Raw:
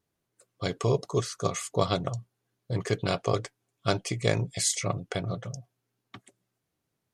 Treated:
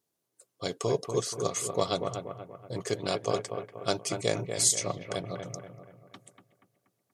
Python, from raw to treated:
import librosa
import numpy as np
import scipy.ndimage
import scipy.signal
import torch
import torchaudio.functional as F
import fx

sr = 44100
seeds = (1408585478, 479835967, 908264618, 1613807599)

y = fx.highpass(x, sr, hz=600.0, slope=6)
y = fx.peak_eq(y, sr, hz=1800.0, db=-10.0, octaves=2.3)
y = fx.echo_bbd(y, sr, ms=239, stages=4096, feedback_pct=45, wet_db=-7)
y = y * 10.0 ** (5.0 / 20.0)